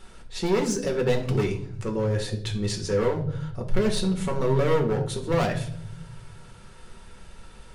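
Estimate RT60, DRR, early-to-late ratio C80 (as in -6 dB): 0.60 s, 1.5 dB, 15.0 dB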